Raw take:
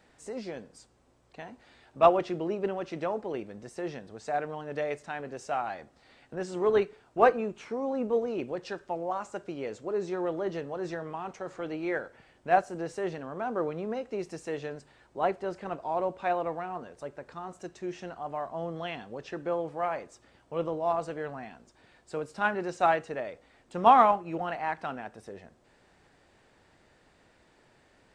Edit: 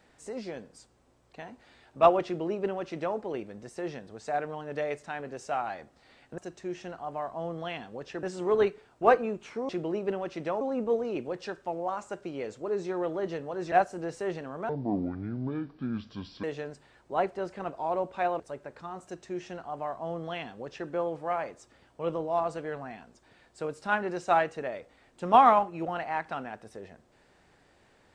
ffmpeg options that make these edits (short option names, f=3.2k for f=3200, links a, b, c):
-filter_complex "[0:a]asplit=9[a][b][c][d][e][f][g][h][i];[a]atrim=end=6.382[j];[b]atrim=start=17.558:end=19.412[k];[c]atrim=start=6.378:end=7.842[l];[d]atrim=start=2.248:end=3.172[m];[e]atrim=start=7.838:end=10.952[n];[f]atrim=start=12.488:end=13.464[o];[g]atrim=start=13.46:end=14.49,asetpts=PTS-STARTPTS,asetrate=26019,aresample=44100,atrim=end_sample=76988,asetpts=PTS-STARTPTS[p];[h]atrim=start=14.486:end=16.452[q];[i]atrim=start=16.918[r];[j][k]acrossfade=d=0.004:c1=hsin:c2=hsin[s];[s][l]acrossfade=d=0.004:c1=hsin:c2=hsin[t];[t][m]acrossfade=d=0.004:c1=hsin:c2=hsin[u];[u][n]acrossfade=d=0.004:c1=hsin:c2=hsin[v];[v][o]acrossfade=d=0.004:c1=hsin:c2=hsin[w];[w][p]acrossfade=d=0.004:c1=hsin:c2=hsin[x];[x][q]acrossfade=d=0.004:c1=hsin:c2=hsin[y];[y][r]acrossfade=d=0.004:c1=hsin:c2=hsin"